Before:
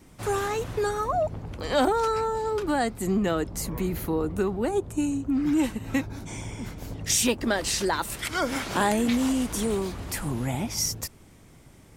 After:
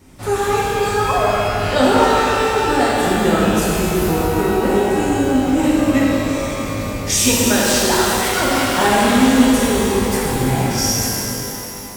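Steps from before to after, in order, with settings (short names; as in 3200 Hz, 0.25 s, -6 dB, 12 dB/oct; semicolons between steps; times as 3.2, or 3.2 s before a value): shimmer reverb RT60 3.2 s, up +12 st, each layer -8 dB, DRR -6.5 dB; gain +3 dB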